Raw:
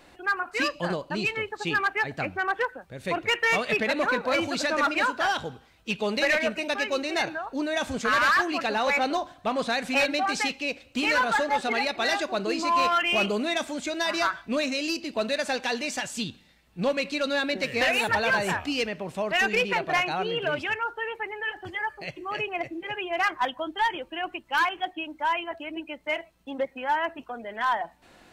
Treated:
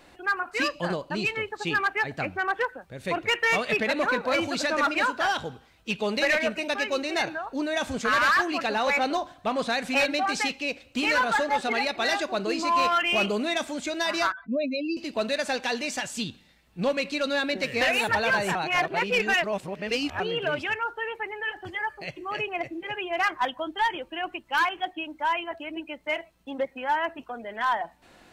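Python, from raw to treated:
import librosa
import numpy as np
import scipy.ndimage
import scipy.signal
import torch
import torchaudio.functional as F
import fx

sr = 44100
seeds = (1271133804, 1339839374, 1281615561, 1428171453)

y = fx.spec_expand(x, sr, power=2.4, at=(14.32, 14.97))
y = fx.edit(y, sr, fx.reverse_span(start_s=18.55, length_s=1.65), tone=tone)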